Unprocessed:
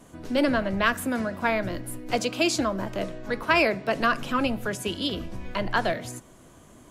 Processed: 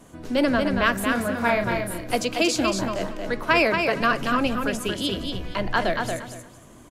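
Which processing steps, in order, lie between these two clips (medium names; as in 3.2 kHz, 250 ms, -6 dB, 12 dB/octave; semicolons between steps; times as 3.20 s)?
1.07–2.10 s: doubling 34 ms -5 dB; feedback delay 231 ms, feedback 21%, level -5 dB; trim +1.5 dB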